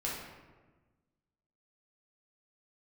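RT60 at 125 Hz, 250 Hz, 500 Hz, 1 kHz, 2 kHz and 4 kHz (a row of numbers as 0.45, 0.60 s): 1.7, 1.6, 1.4, 1.2, 1.1, 0.75 s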